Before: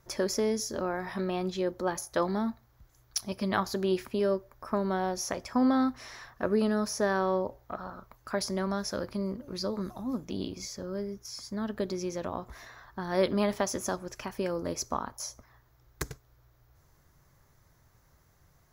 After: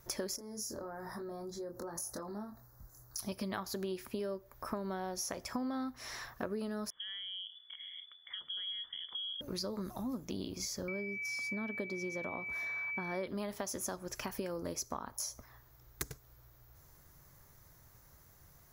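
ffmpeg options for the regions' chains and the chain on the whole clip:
-filter_complex "[0:a]asettb=1/sr,asplit=3[s0][s1][s2];[s0]atrim=end=0.364[s3];[s1]atrim=start=0.36:end=3.19,asetpts=PTS-STARTPTS,afade=t=in:d=0.004:c=qsin,afade=t=out:st=2.826:d=0.004:c=qsin,acompressor=threshold=0.00794:ratio=6:attack=3.2:release=140:knee=1:detection=peak,asuperstop=centerf=2800:order=4:qfactor=0.89,asplit=2[s4][s5];[s5]adelay=24,volume=0.631[s6];[s4][s6]amix=inputs=2:normalize=0,atrim=end_sample=124803[s7];[s2]atrim=start=3.186[s8];[s3][s7]acrossfade=d=0.004:c1=hsin:c2=qsin[s9];[s9][s8]acrossfade=d=0.004:c1=qsin:c2=hsin,asettb=1/sr,asplit=3[s10][s11][s12];[s10]atrim=end=6.904[s13];[s11]atrim=start=6.9:end=9.41,asetpts=PTS-STARTPTS,afade=t=in:d=0.004:c=qsin,afade=t=out:st=2.506:d=0.004:c=qsin,acompressor=threshold=0.01:ratio=3:attack=3.2:release=140:knee=1:detection=peak,asuperstop=centerf=870:order=4:qfactor=0.55,lowpass=f=3000:t=q:w=0.5098,lowpass=f=3000:t=q:w=0.6013,lowpass=f=3000:t=q:w=0.9,lowpass=f=3000:t=q:w=2.563,afreqshift=-3500[s14];[s12]atrim=start=9.406[s15];[s13][s14]acrossfade=d=0.004:c1=hsin:c2=qsin[s16];[s16][s15]acrossfade=d=0.004:c1=qsin:c2=hsin,asettb=1/sr,asplit=3[s17][s18][s19];[s17]atrim=end=10.884[s20];[s18]atrim=start=10.88:end=13.27,asetpts=PTS-STARTPTS,afade=t=in:d=0.004:c=qsin,afade=t=out:st=2.386:d=0.004:c=qsin,highpass=120,highshelf=f=3600:g=-10,aeval=exprs='val(0)+0.0158*sin(2*PI*2300*n/s)':c=same[s21];[s19]atrim=start=13.266[s22];[s20][s21]acrossfade=d=0.004:c1=hsin:c2=qsin[s23];[s23][s22]acrossfade=d=0.004:c1=qsin:c2=hsin,highshelf=f=8800:g=12,acompressor=threshold=0.0141:ratio=6,volume=1.12"

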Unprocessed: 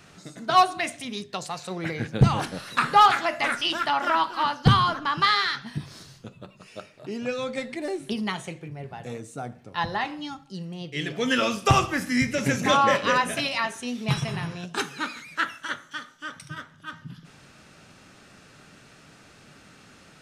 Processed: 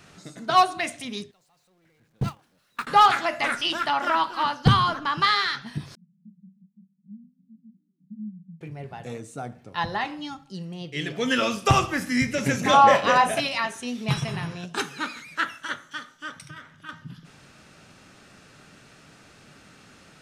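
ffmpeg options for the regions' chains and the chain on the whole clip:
-filter_complex "[0:a]asettb=1/sr,asplit=3[s0][s1][s2];[s0]atrim=end=1.314[s3];[s1]atrim=start=1.31:end=2.87,asetpts=PTS-STARTPTS,afade=t=in:d=0.004:c=qsin,afade=t=out:st=1.556:d=0.004:c=qsin,aeval=exprs='val(0)+0.5*0.0501*sgn(val(0))':c=same,agate=range=0.0126:threshold=0.112:ratio=16:release=100:detection=peak,acompressor=threshold=0.0447:ratio=2.5:attack=3.2:release=140:knee=1:detection=peak[s4];[s2]atrim=start=2.866[s5];[s3][s4]acrossfade=d=0.004:c1=hsin:c2=qsin[s6];[s6][s5]acrossfade=d=0.004:c1=qsin:c2=hsin,asettb=1/sr,asplit=3[s7][s8][s9];[s7]atrim=end=5.954[s10];[s8]atrim=start=5.95:end=8.61,asetpts=PTS-STARTPTS,afade=t=in:d=0.004:c=qsin,afade=t=out:st=2.656:d=0.004:c=qsin,acompressor=threshold=0.0251:ratio=2.5:attack=3.2:release=140:knee=1:detection=peak,asuperpass=centerf=190:order=8:qfactor=3.4[s11];[s9]atrim=start=8.606[s12];[s10][s11]acrossfade=d=0.004:c1=hsin:c2=qsin[s13];[s13][s12]acrossfade=d=0.004:c1=qsin:c2=hsin,asettb=1/sr,asplit=3[s14][s15][s16];[s14]atrim=end=12.734[s17];[s15]atrim=start=12.73:end=13.4,asetpts=PTS-STARTPTS,afade=t=in:d=0.004:c=qsin,afade=t=out:st=0.666:d=0.004:c=qsin,equalizer=f=740:w=2.8:g=12.5,asplit=2[s18][s19];[s19]adelay=35,volume=0.282[s20];[s18][s20]amix=inputs=2:normalize=0,atrim=end_sample=29547[s21];[s16]atrim=start=13.396[s22];[s17][s21]acrossfade=d=0.004:c1=hsin:c2=qsin[s23];[s23][s22]acrossfade=d=0.004:c1=qsin:c2=hsin,asettb=1/sr,asplit=3[s24][s25][s26];[s24]atrim=end=16.474[s27];[s25]atrim=start=16.47:end=16.89,asetpts=PTS-STARTPTS,afade=t=in:d=0.004:c=qsin,afade=t=out:st=0.416:d=0.004:c=qsin,equalizer=f=2200:w=2.4:g=6,acompressor=threshold=0.0141:ratio=6:attack=3.2:release=140:knee=1:detection=peak[s28];[s26]atrim=start=16.886[s29];[s27][s28]acrossfade=d=0.004:c1=hsin:c2=qsin[s30];[s30][s29]acrossfade=d=0.004:c1=qsin:c2=hsin"

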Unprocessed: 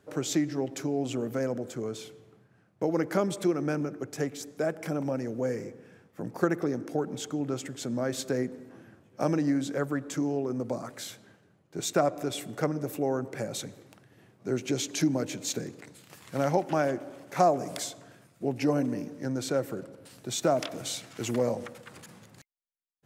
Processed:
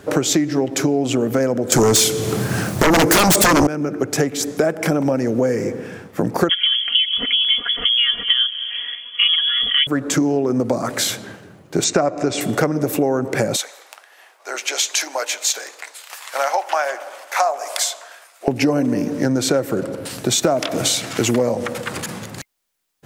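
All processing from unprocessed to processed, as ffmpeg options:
-filter_complex "[0:a]asettb=1/sr,asplit=3[s0][s1][s2];[s0]atrim=end=1.724[s3];[s1]atrim=start=1.72:end=3.67,asetpts=PTS-STARTPTS,afade=t=in:d=0.004:c=qsin,afade=t=out:st=1.946:d=0.004:c=qsin,bass=f=250:g=2,treble=f=4000:g=13,aeval=exprs='0.282*sin(PI/2*7.94*val(0)/0.282)':c=same[s4];[s2]atrim=start=3.666[s5];[s3][s4]acrossfade=d=0.004:c1=hsin:c2=qsin[s6];[s6][s5]acrossfade=d=0.004:c1=qsin:c2=hsin,asettb=1/sr,asplit=3[s7][s8][s9];[s7]atrim=end=6.494[s10];[s8]atrim=start=6.49:end=9.87,asetpts=PTS-STARTPTS,afade=t=in:d=0.004:c=qsin,afade=t=out:st=3.376:d=0.004:c=qsin,lowpass=f=3000:t=q:w=0.5098,lowpass=f=3000:t=q:w=0.6013,lowpass=f=3000:t=q:w=0.9,lowpass=f=3000:t=q:w=2.563,afreqshift=-3500,equalizer=f=870:t=o:w=0.29:g=-12,aecho=1:1:4.2:0.96,atrim=end_sample=149058[s11];[s9]atrim=start=9.866[s12];[s10][s11]acrossfade=d=0.004:c1=hsin:c2=qsin[s13];[s13][s12]acrossfade=d=0.004:c1=qsin:c2=hsin,asettb=1/sr,asplit=3[s14][s15][s16];[s14]atrim=end=11.844[s17];[s15]atrim=start=11.84:end=12.41,asetpts=PTS-STARTPTS,afade=t=in:d=0.004:c=qsin,afade=t=out:st=0.566:d=0.004:c=qsin,lowpass=f=7400:w=0.5412,lowpass=f=7400:w=1.3066,equalizer=f=3400:t=o:w=0.27:g=-8.5[s18];[s16]atrim=start=12.406[s19];[s17][s18]acrossfade=d=0.004:c1=hsin:c2=qsin[s20];[s20][s19]acrossfade=d=0.004:c1=qsin:c2=hsin,asettb=1/sr,asplit=3[s21][s22][s23];[s21]atrim=end=13.564[s24];[s22]atrim=start=13.56:end=18.48,asetpts=PTS-STARTPTS,afade=t=in:d=0.004:c=qsin,afade=t=out:st=4.916:d=0.004:c=qsin,highpass=f=710:w=0.5412,highpass=f=710:w=1.3066,flanger=delay=1.9:depth=7.9:regen=-75:speed=1.2:shape=sinusoidal[s25];[s23]atrim=start=18.476[s26];[s24][s25]acrossfade=d=0.004:c1=hsin:c2=qsin[s27];[s27][s26]acrossfade=d=0.004:c1=qsin:c2=hsin,equalizer=f=140:t=o:w=0.76:g=-2.5,acompressor=threshold=0.0141:ratio=5,alimiter=level_in=13.3:limit=0.891:release=50:level=0:latency=1,volume=0.891"

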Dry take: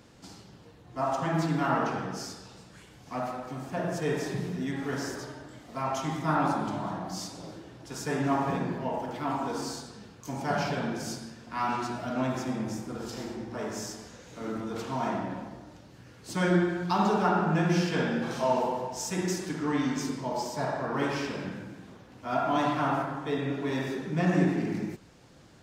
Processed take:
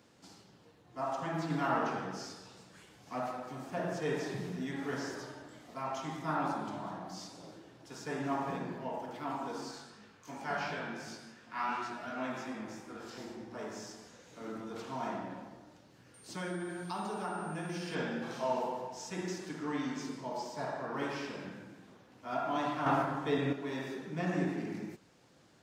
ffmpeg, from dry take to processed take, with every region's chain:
-filter_complex "[0:a]asettb=1/sr,asplit=3[s0][s1][s2];[s0]atrim=end=1.504[s3];[s1]atrim=start=1.5:end=5.74,asetpts=PTS-STARTPTS,afade=t=in:d=0.004:c=qsin,afade=t=out:st=4.236:d=0.004:c=qsin,acontrast=83,flanger=delay=6:depth=7:regen=-66:speed=1.1:shape=triangular[s4];[s2]atrim=start=5.736[s5];[s3][s4]acrossfade=d=0.004:c1=hsin:c2=qsin[s6];[s6][s5]acrossfade=d=0.004:c1=qsin:c2=hsin,asettb=1/sr,asplit=3[s7][s8][s9];[s7]atrim=end=9.714[s10];[s8]atrim=start=9.71:end=13.18,asetpts=PTS-STARTPTS,afade=t=in:d=0.004:c=qsin,afade=t=out:st=3.466:d=0.004:c=qsin,equalizer=f=1800:w=0.72:g=7.5,flanger=delay=18.5:depth=3:speed=2.8[s11];[s9]atrim=start=13.176[s12];[s10][s11]acrossfade=d=0.004:c1=hsin:c2=qsin[s13];[s13][s12]acrossfade=d=0.004:c1=qsin:c2=hsin,asettb=1/sr,asplit=3[s14][s15][s16];[s14]atrim=end=16.144[s17];[s15]atrim=start=16.14:end=17.95,asetpts=PTS-STARTPTS,afade=t=in:d=0.004:c=qsin,afade=t=out:st=1.806:d=0.004:c=qsin,acompressor=threshold=0.0355:ratio=2.5:attack=3.2:release=140:knee=1:detection=peak,aeval=exprs='val(0)+0.002*sin(2*PI*8900*n/s)':c=same,highshelf=f=8300:g=11.5[s18];[s16]atrim=start=17.946[s19];[s17][s18]acrossfade=d=0.004:c1=hsin:c2=qsin[s20];[s20][s19]acrossfade=d=0.004:c1=qsin:c2=hsin,asettb=1/sr,asplit=3[s21][s22][s23];[s21]atrim=end=22.864[s24];[s22]atrim=start=22.86:end=23.53,asetpts=PTS-STARTPTS,afade=t=in:d=0.004:c=qsin,afade=t=out:st=0.666:d=0.004:c=qsin,lowshelf=f=82:g=10,acontrast=51[s25];[s23]atrim=start=23.526[s26];[s24][s25]acrossfade=d=0.004:c1=hsin:c2=qsin[s27];[s27][s26]acrossfade=d=0.004:c1=qsin:c2=hsin,highpass=f=180:p=1,acrossover=split=6200[s28][s29];[s29]acompressor=threshold=0.00224:ratio=4:attack=1:release=60[s30];[s28][s30]amix=inputs=2:normalize=0,volume=0.473"

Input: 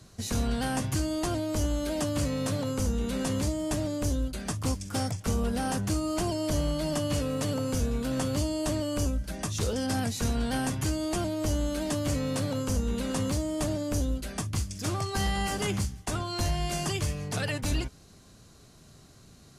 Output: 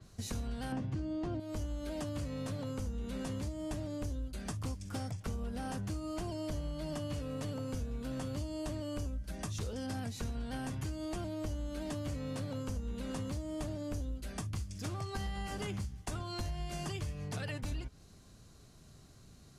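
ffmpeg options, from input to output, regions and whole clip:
-filter_complex "[0:a]asettb=1/sr,asplit=3[s0][s1][s2];[s0]atrim=end=0.724[s3];[s1]atrim=start=0.72:end=1.4,asetpts=PTS-STARTPTS,afade=t=in:d=0.004:c=qsin,afade=t=out:st=0.676:d=0.004:c=qsin,lowpass=4500,equalizer=f=230:t=o:w=3:g=10[s4];[s2]atrim=start=1.396[s5];[s3][s4]acrossfade=d=0.004:c1=hsin:c2=qsin[s6];[s6][s5]acrossfade=d=0.004:c1=qsin:c2=hsin,lowshelf=f=110:g=6.5,acompressor=threshold=0.0355:ratio=6,adynamicequalizer=threshold=0.00158:dfrequency=4900:dqfactor=0.7:tfrequency=4900:tqfactor=0.7:attack=5:release=100:ratio=0.375:range=2.5:mode=cutabove:tftype=highshelf,volume=0.501"

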